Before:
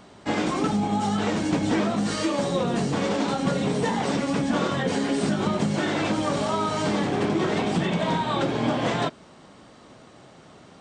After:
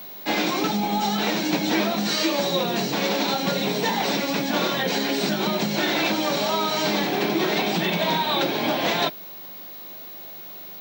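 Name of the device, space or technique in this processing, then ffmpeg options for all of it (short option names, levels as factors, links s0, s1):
old television with a line whistle: -af "highpass=f=190:w=0.5412,highpass=f=190:w=1.3066,equalizer=f=250:t=q:w=4:g=-9,equalizer=f=470:t=q:w=4:g=-5,equalizer=f=1200:t=q:w=4:g=-5,equalizer=f=2400:t=q:w=4:g=5,equalizer=f=4000:t=q:w=4:g=9,equalizer=f=5700:t=q:w=4:g=4,lowpass=f=7200:w=0.5412,lowpass=f=7200:w=1.3066,aeval=exprs='val(0)+0.01*sin(2*PI*15625*n/s)':c=same,volume=1.5"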